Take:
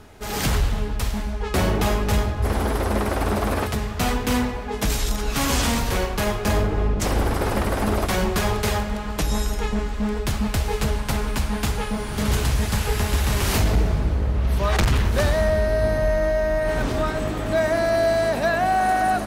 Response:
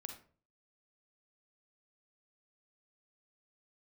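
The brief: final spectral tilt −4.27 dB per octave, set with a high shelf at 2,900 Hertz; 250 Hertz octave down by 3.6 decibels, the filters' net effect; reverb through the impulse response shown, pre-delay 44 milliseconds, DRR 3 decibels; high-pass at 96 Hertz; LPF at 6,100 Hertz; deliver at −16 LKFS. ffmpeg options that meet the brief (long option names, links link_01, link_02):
-filter_complex "[0:a]highpass=96,lowpass=6100,equalizer=frequency=250:width_type=o:gain=-4.5,highshelf=frequency=2900:gain=4,asplit=2[link_01][link_02];[1:a]atrim=start_sample=2205,adelay=44[link_03];[link_02][link_03]afir=irnorm=-1:irlink=0,volume=1dB[link_04];[link_01][link_04]amix=inputs=2:normalize=0,volume=7dB"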